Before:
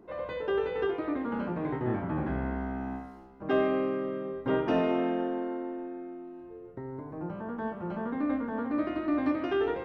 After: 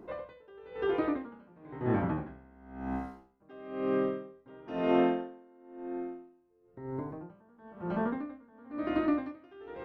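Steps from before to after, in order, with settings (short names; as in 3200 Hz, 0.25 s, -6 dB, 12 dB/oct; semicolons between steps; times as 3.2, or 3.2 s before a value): dB-linear tremolo 1 Hz, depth 29 dB; gain +4 dB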